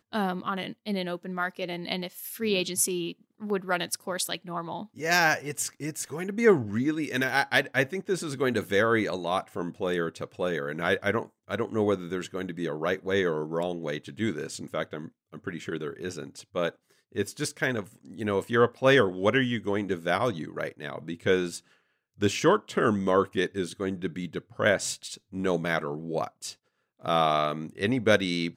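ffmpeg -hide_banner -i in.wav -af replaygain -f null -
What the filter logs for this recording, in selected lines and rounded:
track_gain = +7.3 dB
track_peak = 0.289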